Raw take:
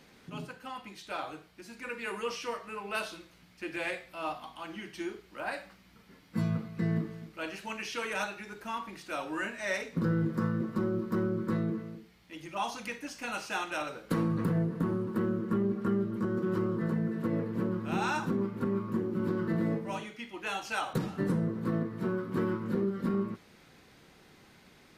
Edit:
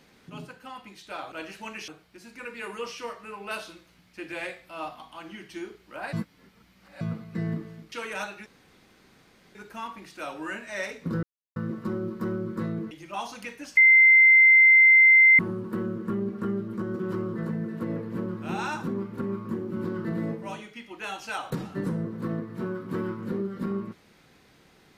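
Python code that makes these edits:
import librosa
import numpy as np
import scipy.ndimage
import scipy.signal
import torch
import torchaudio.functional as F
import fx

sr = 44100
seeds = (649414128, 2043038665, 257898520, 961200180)

y = fx.edit(x, sr, fx.reverse_span(start_s=5.57, length_s=0.88),
    fx.move(start_s=7.36, length_s=0.56, to_s=1.32),
    fx.insert_room_tone(at_s=8.46, length_s=1.09),
    fx.silence(start_s=10.14, length_s=0.33),
    fx.cut(start_s=11.82, length_s=0.52),
    fx.bleep(start_s=13.2, length_s=1.62, hz=2080.0, db=-12.0), tone=tone)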